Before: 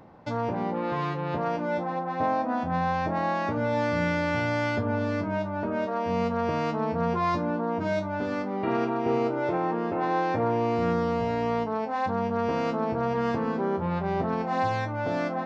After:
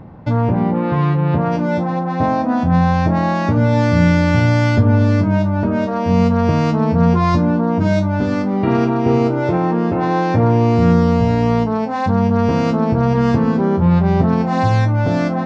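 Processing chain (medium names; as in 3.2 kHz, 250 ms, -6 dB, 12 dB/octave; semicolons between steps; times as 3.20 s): tone controls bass +13 dB, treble -8 dB, from 1.51 s treble +6 dB; trim +7 dB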